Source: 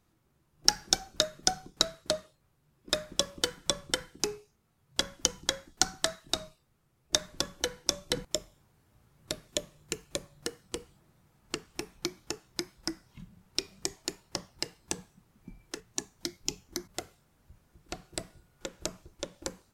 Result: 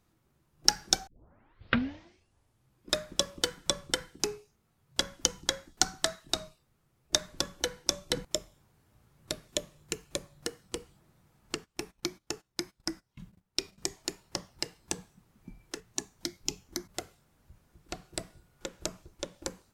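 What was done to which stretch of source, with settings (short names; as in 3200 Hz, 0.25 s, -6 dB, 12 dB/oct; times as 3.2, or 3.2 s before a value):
1.07 tape start 1.82 s
11.57–13.78 gate -56 dBFS, range -17 dB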